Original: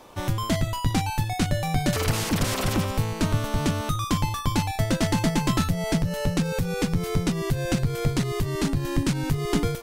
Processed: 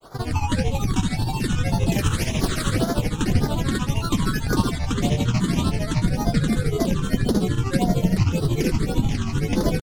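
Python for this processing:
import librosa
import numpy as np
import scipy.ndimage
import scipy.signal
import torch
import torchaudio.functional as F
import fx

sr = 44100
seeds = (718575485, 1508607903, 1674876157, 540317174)

p1 = fx.rider(x, sr, range_db=10, speed_s=0.5)
p2 = x + (p1 * librosa.db_to_amplitude(-0.5))
p3 = fx.room_flutter(p2, sr, wall_m=11.5, rt60_s=1.4)
p4 = fx.phaser_stages(p3, sr, stages=8, low_hz=620.0, high_hz=2100.0, hz=1.8, feedback_pct=5)
p5 = fx.granulator(p4, sr, seeds[0], grain_ms=119.0, per_s=13.0, spray_ms=29.0, spread_st=7)
y = p5 * librosa.db_to_amplitude(-2.5)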